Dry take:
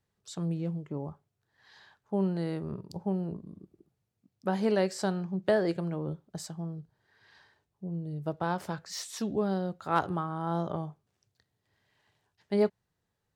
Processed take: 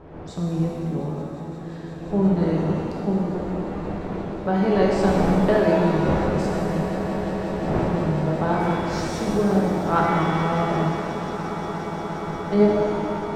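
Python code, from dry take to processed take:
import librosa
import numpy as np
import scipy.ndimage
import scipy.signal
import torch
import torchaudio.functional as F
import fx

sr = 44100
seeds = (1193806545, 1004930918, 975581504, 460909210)

y = fx.dmg_wind(x, sr, seeds[0], corner_hz=470.0, level_db=-41.0)
y = fx.lowpass(y, sr, hz=2500.0, slope=6)
y = fx.echo_swell(y, sr, ms=177, loudest=8, wet_db=-16.5)
y = fx.rev_shimmer(y, sr, seeds[1], rt60_s=2.2, semitones=7, shimmer_db=-8, drr_db=-3.0)
y = F.gain(torch.from_numpy(y), 4.5).numpy()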